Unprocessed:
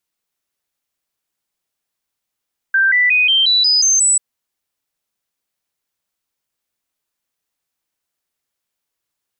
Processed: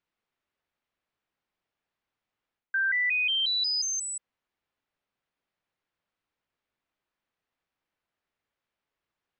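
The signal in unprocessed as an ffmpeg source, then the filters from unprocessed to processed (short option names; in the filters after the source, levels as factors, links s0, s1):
-f lavfi -i "aevalsrc='0.316*clip(min(mod(t,0.18),0.18-mod(t,0.18))/0.005,0,1)*sin(2*PI*1570*pow(2,floor(t/0.18)/3)*mod(t,0.18))':d=1.44:s=44100"
-af "lowpass=2600,areverse,acompressor=threshold=0.0501:ratio=6,areverse"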